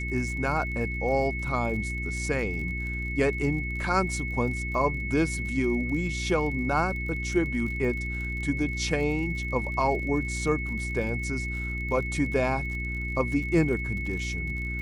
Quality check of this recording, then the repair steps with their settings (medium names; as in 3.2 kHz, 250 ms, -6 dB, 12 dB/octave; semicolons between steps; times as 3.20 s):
crackle 45 per s -36 dBFS
hum 60 Hz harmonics 6 -33 dBFS
whine 2.2 kHz -33 dBFS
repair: de-click; band-stop 2.2 kHz, Q 30; de-hum 60 Hz, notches 6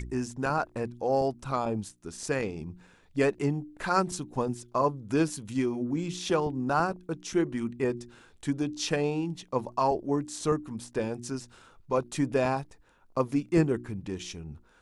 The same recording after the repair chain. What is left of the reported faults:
nothing left